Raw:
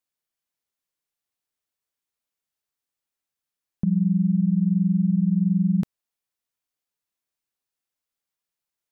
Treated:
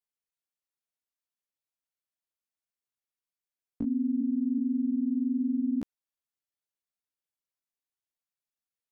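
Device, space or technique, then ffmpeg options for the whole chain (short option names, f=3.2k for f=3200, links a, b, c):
chipmunk voice: -af "asetrate=60591,aresample=44100,atempo=0.727827,volume=-7.5dB"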